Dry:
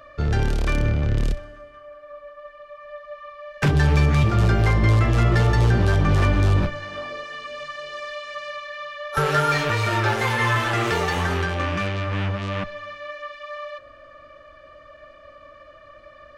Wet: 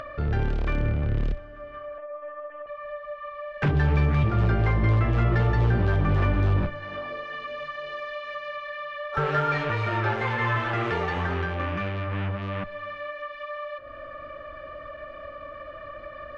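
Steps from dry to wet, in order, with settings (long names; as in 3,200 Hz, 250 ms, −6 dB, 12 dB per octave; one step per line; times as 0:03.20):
low-pass filter 2,600 Hz 12 dB per octave
upward compression, threshold −24 dBFS
0:01.98–0:02.67: linear-prediction vocoder at 8 kHz pitch kept
level −4 dB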